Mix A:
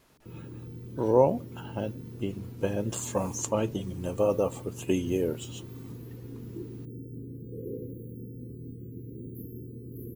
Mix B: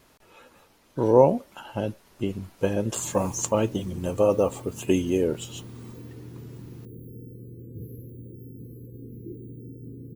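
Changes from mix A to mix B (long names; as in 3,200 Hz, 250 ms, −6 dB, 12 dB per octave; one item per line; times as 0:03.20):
speech +4.5 dB
background: entry +2.70 s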